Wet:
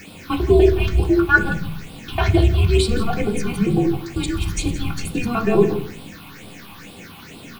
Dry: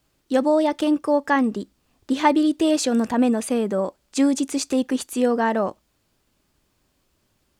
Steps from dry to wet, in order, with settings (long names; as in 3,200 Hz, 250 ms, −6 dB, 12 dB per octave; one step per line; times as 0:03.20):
reversed piece by piece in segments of 99 ms
low-shelf EQ 200 Hz +11 dB
comb filter 3 ms, depth 84%
frequency shifter −240 Hz
background noise pink −40 dBFS
all-pass phaser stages 6, 2.2 Hz, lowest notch 450–1,800 Hz
single-tap delay 169 ms −14.5 dB
convolution reverb RT60 0.50 s, pre-delay 3 ms, DRR 1 dB